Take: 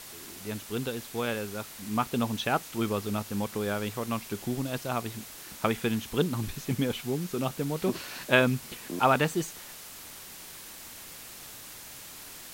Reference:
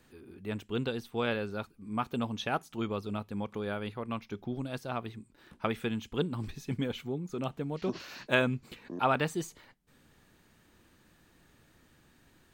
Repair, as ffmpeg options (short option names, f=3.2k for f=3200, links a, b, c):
-af "afwtdn=0.0063,asetnsamples=n=441:p=0,asendcmd='1.75 volume volume -4.5dB',volume=0dB"